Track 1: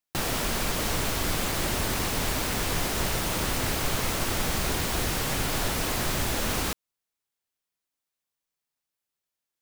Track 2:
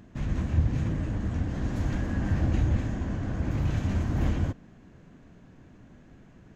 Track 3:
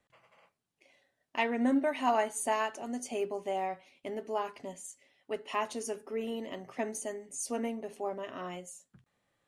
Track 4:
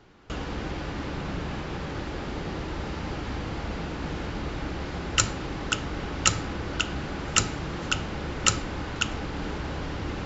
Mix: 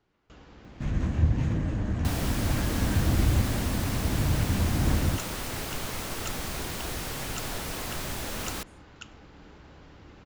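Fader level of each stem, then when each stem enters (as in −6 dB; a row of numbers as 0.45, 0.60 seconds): −6.5, +1.0, −19.5, −18.0 decibels; 1.90, 0.65, 0.00, 0.00 seconds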